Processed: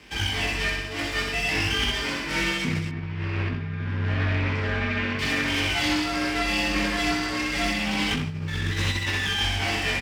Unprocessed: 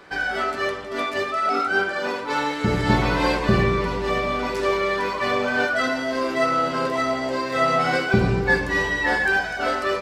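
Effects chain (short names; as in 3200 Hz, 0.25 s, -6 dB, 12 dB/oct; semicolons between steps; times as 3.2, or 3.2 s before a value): minimum comb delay 0.38 ms; limiter -15.5 dBFS, peak gain reduction 10 dB; bell 520 Hz -12.5 dB 1.3 oct; frequency shift +43 Hz; flutter echo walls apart 10.8 m, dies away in 0.79 s; negative-ratio compressor -26 dBFS, ratio -0.5; 2.89–5.19 LPF 2500 Hz 12 dB/oct; doubler 20 ms -5 dB; Doppler distortion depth 0.19 ms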